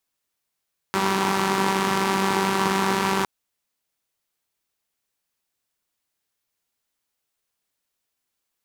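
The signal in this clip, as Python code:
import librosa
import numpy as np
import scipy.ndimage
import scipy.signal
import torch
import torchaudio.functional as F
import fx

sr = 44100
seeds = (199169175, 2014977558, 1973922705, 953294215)

y = fx.engine_four(sr, seeds[0], length_s=2.31, rpm=5800, resonances_hz=(210.0, 360.0, 900.0))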